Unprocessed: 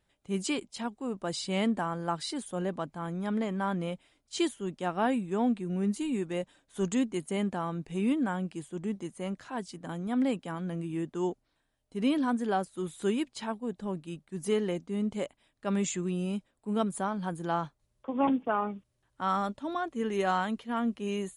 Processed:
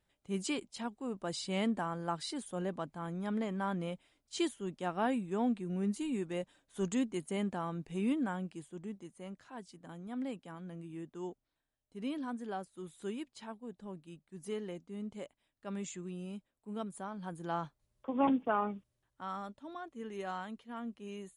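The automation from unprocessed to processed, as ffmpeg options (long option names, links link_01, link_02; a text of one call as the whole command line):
ffmpeg -i in.wav -af "volume=4dB,afade=type=out:start_time=8.17:duration=0.85:silence=0.473151,afade=type=in:start_time=17.06:duration=1.03:silence=0.375837,afade=type=out:start_time=18.74:duration=0.53:silence=0.334965" out.wav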